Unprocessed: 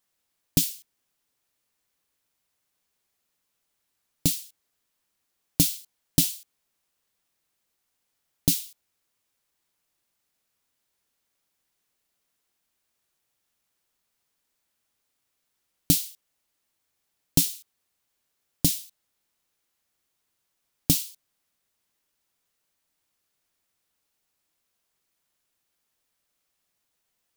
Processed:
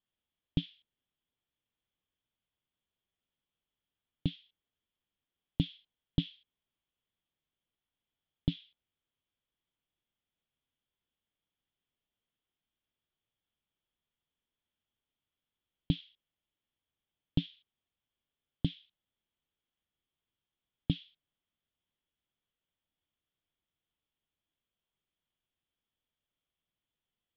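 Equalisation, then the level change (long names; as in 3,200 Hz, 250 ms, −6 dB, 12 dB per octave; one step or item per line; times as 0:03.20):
transistor ladder low-pass 3,500 Hz, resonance 80%
high-frequency loss of the air 390 metres
low-shelf EQ 350 Hz +9.5 dB
0.0 dB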